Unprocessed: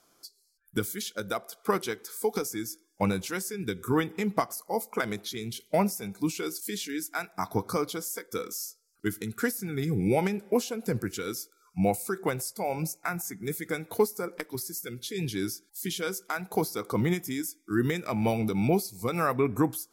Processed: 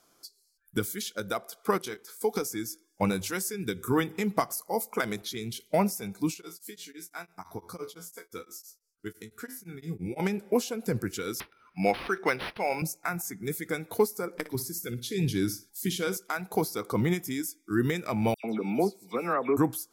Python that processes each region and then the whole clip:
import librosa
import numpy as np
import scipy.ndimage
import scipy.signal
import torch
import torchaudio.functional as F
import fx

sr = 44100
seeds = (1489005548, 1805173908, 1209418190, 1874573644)

y = fx.chain(x, sr, fx.level_steps(step_db=12),
    fx.doubler(ms=24.0, db=-10.0), at=(1.78, 2.21))
y = fx.chain(y, sr, fx.high_shelf(hz=5400.0, db=4.0),
    fx.hum_notches(base_hz=50, count=3), at=(3.05, 5.22))
y = fx.chain(y, sr, fx.comb_fb(f0_hz=86.0, decay_s=0.25, harmonics='all', damping=0.0, mix_pct=80),
    fx.tremolo_abs(hz=5.9), at=(6.34, 10.2))
y = fx.chain(y, sr, fx.highpass(hz=220.0, slope=12),
    fx.peak_eq(hz=2200.0, db=11.5, octaves=1.5),
    fx.resample_linear(factor=6), at=(11.4, 12.82))
y = fx.chain(y, sr, fx.low_shelf(hz=290.0, db=6.5),
    fx.room_flutter(wall_m=10.1, rt60_s=0.25), at=(14.34, 16.17))
y = fx.chain(y, sr, fx.highpass(hz=210.0, slope=24),
    fx.high_shelf(hz=3400.0, db=-11.5),
    fx.dispersion(late='lows', ms=98.0, hz=2900.0), at=(18.34, 19.57))